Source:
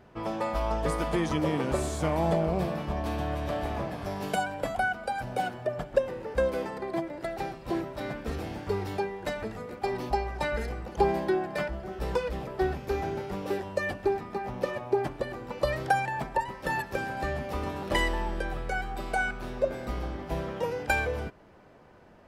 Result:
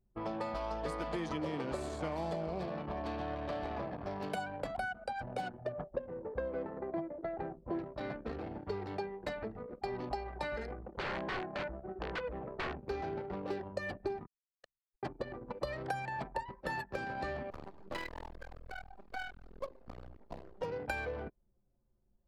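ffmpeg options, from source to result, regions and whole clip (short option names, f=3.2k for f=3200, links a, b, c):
-filter_complex "[0:a]asettb=1/sr,asplit=3[a][b][c];[a]atrim=end=5.724[d];[b]atrim=start=5.72:end=7.79,asetpts=PTS-STARTPTS,afade=t=in:d=0.004:c=qsin,afade=t=out:st=2.066:d=0.004:c=qsin,lowpass=1.5k,asplit=2[e][f];[f]adelay=12,volume=-8dB[g];[e][g]amix=inputs=2:normalize=0,atrim=end_sample=91287[h];[c]atrim=start=7.786[i];[d][h]acrossfade=d=0.004:c1=hsin:c2=qsin[j];[j][i]acrossfade=d=0.004:c1=qsin:c2=hsin,asettb=1/sr,asplit=3[k][l][m];[k]atrim=end=10.714[n];[l]atrim=start=10.71:end=12.83,asetpts=PTS-STARTPTS,afade=t=in:d=0.004:c=qsin,afade=t=out:st=2.116:d=0.004:c=qsin,aeval=exprs='(mod(15*val(0)+1,2)-1)/15':c=same,lowpass=2.6k[o];[m]atrim=start=12.826[p];[n][o]acrossfade=d=0.004:c1=hsin:c2=qsin[q];[q][p]acrossfade=d=0.004:c1=qsin:c2=hsin,asettb=1/sr,asplit=3[r][s][t];[r]atrim=end=14.264[u];[s]atrim=start=14.26:end=15.03,asetpts=PTS-STARTPTS,afade=t=in:d=0.004:c=qsin,afade=t=out:st=0.766:d=0.004:c=qsin,highpass=1.5k,acrusher=bits=4:mix=0:aa=0.5[v];[t]atrim=start=15.026[w];[u][v]acrossfade=d=0.004:c1=hsin:c2=qsin[x];[x][w]acrossfade=d=0.004:c1=qsin:c2=hsin,asettb=1/sr,asplit=3[y][z][aa];[y]atrim=end=17.504[ab];[z]atrim=start=17.5:end=20.62,asetpts=PTS-STARTPTS,afade=t=in:d=0.004:c=qsin,afade=t=out:st=3.116:d=0.004:c=qsin,flanger=delay=2.2:depth=9.8:regen=-62:speed=1:shape=sinusoidal,acrusher=bits=4:dc=4:mix=0:aa=0.000001[ac];[aa]atrim=start=20.616[ad];[ab][ac]acrossfade=d=0.004:c1=hsin:c2=qsin[ae];[ae][ad]acrossfade=d=0.004:c1=qsin:c2=hsin,anlmdn=2.51,equalizer=f=4.4k:w=4.6:g=6,acrossover=split=220|3600[af][ag][ah];[af]acompressor=threshold=-43dB:ratio=4[ai];[ag]acompressor=threshold=-32dB:ratio=4[aj];[ah]acompressor=threshold=-53dB:ratio=4[ak];[ai][aj][ak]amix=inputs=3:normalize=0,volume=-3.5dB"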